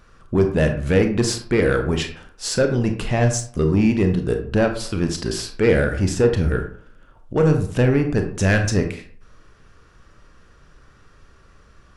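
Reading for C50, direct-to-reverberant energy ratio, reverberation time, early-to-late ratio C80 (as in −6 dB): 8.5 dB, 5.0 dB, 0.50 s, 12.5 dB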